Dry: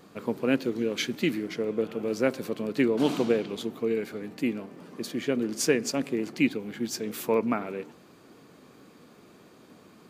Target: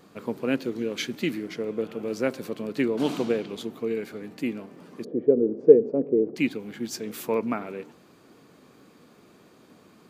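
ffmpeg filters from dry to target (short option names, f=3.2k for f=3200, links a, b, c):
-filter_complex "[0:a]asplit=3[a][b][c];[a]afade=t=out:st=5.03:d=0.02[d];[b]lowpass=f=460:t=q:w=4.9,afade=t=in:st=5.03:d=0.02,afade=t=out:st=6.35:d=0.02[e];[c]afade=t=in:st=6.35:d=0.02[f];[d][e][f]amix=inputs=3:normalize=0,volume=-1dB"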